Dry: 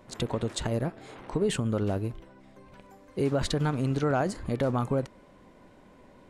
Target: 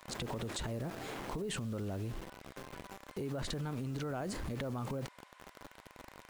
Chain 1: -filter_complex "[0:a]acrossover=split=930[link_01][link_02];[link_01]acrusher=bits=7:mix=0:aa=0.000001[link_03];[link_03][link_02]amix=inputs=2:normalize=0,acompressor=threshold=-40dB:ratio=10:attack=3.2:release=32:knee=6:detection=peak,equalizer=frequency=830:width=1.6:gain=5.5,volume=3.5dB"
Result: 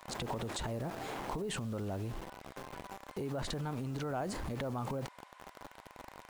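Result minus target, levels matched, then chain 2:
1,000 Hz band +3.5 dB
-filter_complex "[0:a]acrossover=split=930[link_01][link_02];[link_01]acrusher=bits=7:mix=0:aa=0.000001[link_03];[link_03][link_02]amix=inputs=2:normalize=0,acompressor=threshold=-40dB:ratio=10:attack=3.2:release=32:knee=6:detection=peak,volume=3.5dB"

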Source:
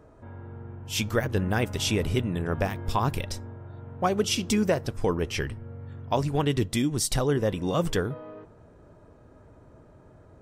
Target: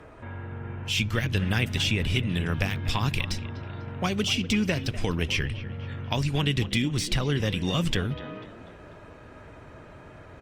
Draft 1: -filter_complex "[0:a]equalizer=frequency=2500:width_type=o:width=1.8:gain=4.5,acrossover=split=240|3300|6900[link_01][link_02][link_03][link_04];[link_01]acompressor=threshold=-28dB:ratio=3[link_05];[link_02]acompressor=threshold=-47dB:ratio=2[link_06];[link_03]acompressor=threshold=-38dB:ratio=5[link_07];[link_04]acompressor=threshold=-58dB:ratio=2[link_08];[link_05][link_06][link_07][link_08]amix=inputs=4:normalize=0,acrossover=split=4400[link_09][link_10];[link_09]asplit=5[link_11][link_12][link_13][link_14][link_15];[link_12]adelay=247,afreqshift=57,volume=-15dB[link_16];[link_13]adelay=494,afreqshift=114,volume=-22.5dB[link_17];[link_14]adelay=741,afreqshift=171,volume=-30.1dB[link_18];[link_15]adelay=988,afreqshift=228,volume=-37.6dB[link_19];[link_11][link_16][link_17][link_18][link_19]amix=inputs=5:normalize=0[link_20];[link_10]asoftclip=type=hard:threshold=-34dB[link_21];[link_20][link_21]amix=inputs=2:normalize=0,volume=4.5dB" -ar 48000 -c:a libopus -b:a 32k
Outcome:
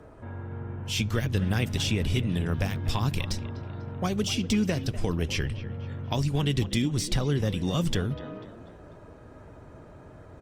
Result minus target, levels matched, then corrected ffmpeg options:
2,000 Hz band −5.0 dB
-filter_complex "[0:a]equalizer=frequency=2500:width_type=o:width=1.8:gain=15.5,acrossover=split=240|3300|6900[link_01][link_02][link_03][link_04];[link_01]acompressor=threshold=-28dB:ratio=3[link_05];[link_02]acompressor=threshold=-47dB:ratio=2[link_06];[link_03]acompressor=threshold=-38dB:ratio=5[link_07];[link_04]acompressor=threshold=-58dB:ratio=2[link_08];[link_05][link_06][link_07][link_08]amix=inputs=4:normalize=0,acrossover=split=4400[link_09][link_10];[link_09]asplit=5[link_11][link_12][link_13][link_14][link_15];[link_12]adelay=247,afreqshift=57,volume=-15dB[link_16];[link_13]adelay=494,afreqshift=114,volume=-22.5dB[link_17];[link_14]adelay=741,afreqshift=171,volume=-30.1dB[link_18];[link_15]adelay=988,afreqshift=228,volume=-37.6dB[link_19];[link_11][link_16][link_17][link_18][link_19]amix=inputs=5:normalize=0[link_20];[link_10]asoftclip=type=hard:threshold=-34dB[link_21];[link_20][link_21]amix=inputs=2:normalize=0,volume=4.5dB" -ar 48000 -c:a libopus -b:a 32k

